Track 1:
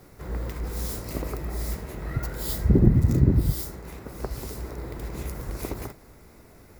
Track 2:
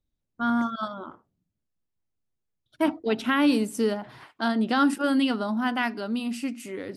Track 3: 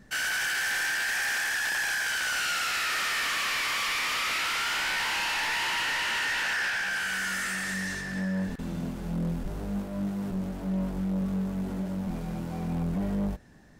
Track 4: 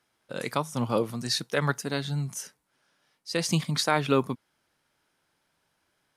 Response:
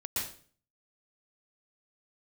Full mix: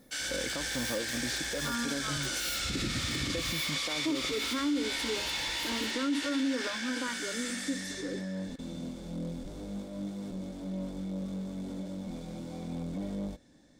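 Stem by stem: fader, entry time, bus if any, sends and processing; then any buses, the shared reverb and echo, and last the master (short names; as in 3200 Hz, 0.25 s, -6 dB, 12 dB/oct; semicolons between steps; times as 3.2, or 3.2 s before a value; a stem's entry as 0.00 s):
-18.0 dB, 0.00 s, no send, resonant high shelf 8000 Hz +8.5 dB, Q 3
-6.5 dB, 1.25 s, no send, LFO notch saw up 2.4 Hz 320–2500 Hz; fixed phaser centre 720 Hz, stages 6
-11.0 dB, 0.00 s, no send, band shelf 5500 Hz +10 dB
-5.0 dB, 0.00 s, no send, compressor, threshold -32 dBFS, peak gain reduction 14 dB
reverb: off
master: small resonant body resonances 290/520/2200/3500 Hz, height 12 dB, ringing for 35 ms; limiter -23 dBFS, peak gain reduction 11 dB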